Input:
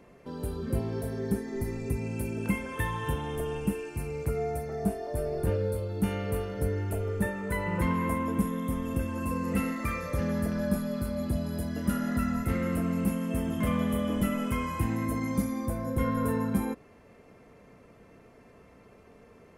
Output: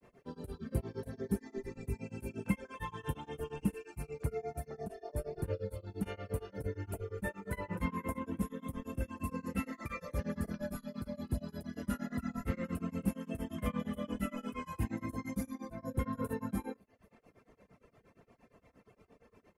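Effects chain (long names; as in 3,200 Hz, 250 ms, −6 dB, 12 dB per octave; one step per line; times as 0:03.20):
repeating echo 237 ms, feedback 43%, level −23.5 dB
reverb reduction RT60 0.7 s
granular cloud 127 ms, grains 8.6 per second, spray 24 ms, pitch spread up and down by 0 semitones
level −3 dB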